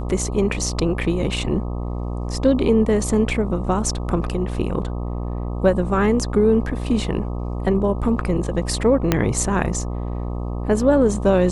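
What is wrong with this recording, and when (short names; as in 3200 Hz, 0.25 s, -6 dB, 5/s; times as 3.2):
buzz 60 Hz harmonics 21 -26 dBFS
9.12 pop -2 dBFS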